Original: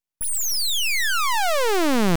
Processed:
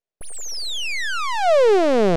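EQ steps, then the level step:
high-frequency loss of the air 76 metres
flat-topped bell 520 Hz +11 dB 1.1 octaves
−1.5 dB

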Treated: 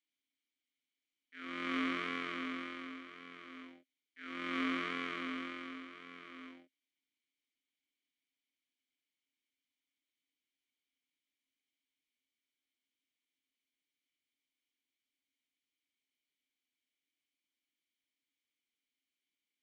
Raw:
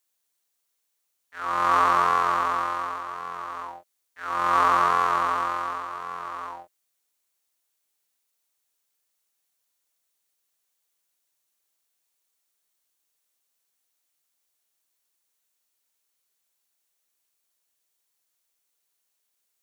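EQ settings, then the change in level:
formant filter i
high-pass filter 71 Hz
+6.5 dB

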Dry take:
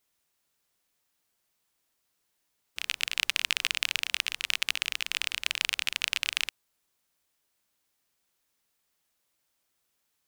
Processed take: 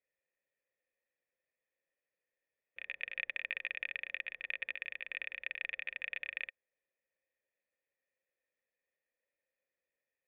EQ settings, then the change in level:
formant resonators in series e
high-shelf EQ 3,200 Hz +11.5 dB
+3.0 dB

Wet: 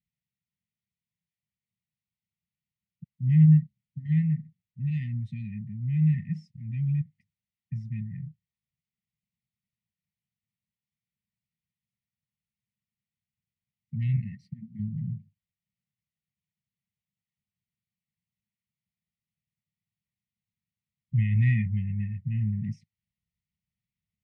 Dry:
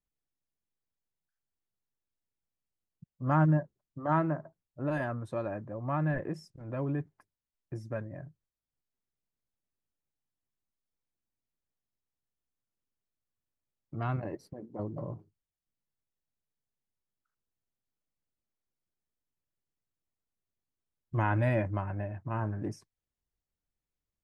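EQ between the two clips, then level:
band-pass filter 120–2,800 Hz
linear-phase brick-wall band-stop 230–1,800 Hz
low-shelf EQ 400 Hz +7 dB
+4.5 dB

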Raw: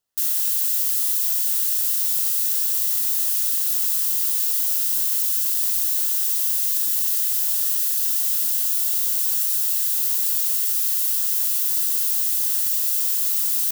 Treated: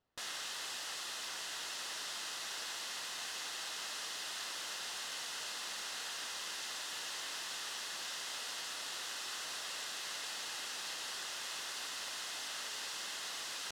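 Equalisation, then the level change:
head-to-tape spacing loss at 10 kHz 33 dB
+8.0 dB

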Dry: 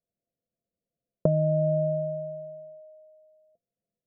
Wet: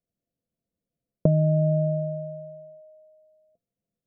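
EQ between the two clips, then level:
parametric band 280 Hz +3.5 dB 0.25 octaves
low-shelf EQ 400 Hz +10.5 dB
−4.0 dB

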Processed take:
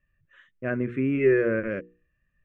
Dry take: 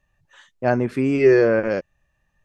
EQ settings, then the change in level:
low-pass filter 2,900 Hz 12 dB per octave
mains-hum notches 60/120/180/240/300/360/420/480 Hz
phaser with its sweep stopped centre 2,000 Hz, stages 4
−3.0 dB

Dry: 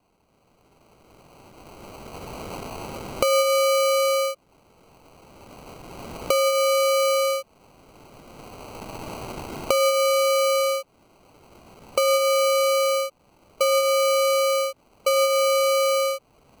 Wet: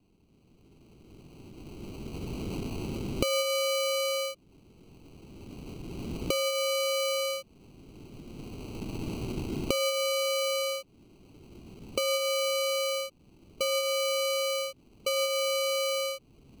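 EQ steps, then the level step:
flat-topped bell 1,000 Hz −15 dB 2.3 octaves
high-shelf EQ 2,900 Hz −12 dB
+4.5 dB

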